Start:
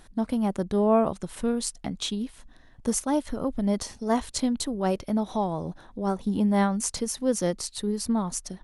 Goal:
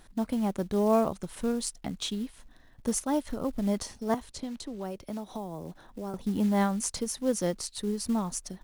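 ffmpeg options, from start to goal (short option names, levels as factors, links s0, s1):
-filter_complex "[0:a]acrusher=bits=6:mode=log:mix=0:aa=0.000001,asettb=1/sr,asplit=3[s0][s1][s2];[s0]atrim=end=4.144[s3];[s1]atrim=start=4.14:end=6.14,asetpts=PTS-STARTPTS,afade=t=in:d=0.004:c=qsin,afade=t=out:st=1.996:d=0.004:c=qsin,acrossover=split=240|540|6900[s4][s5][s6][s7];[s4]acompressor=threshold=0.00891:ratio=4[s8];[s5]acompressor=threshold=0.0141:ratio=4[s9];[s6]acompressor=threshold=0.01:ratio=4[s10];[s7]acompressor=threshold=0.002:ratio=4[s11];[s8][s9][s10][s11]amix=inputs=4:normalize=0[s12];[s2]atrim=start=6.136[s13];[s3][s12]acrossfade=d=0.004:c1=hsin:c2=qsin[s14];[s14][s13]acrossfade=d=0.004:c1=qsin:c2=hsin,volume=0.708"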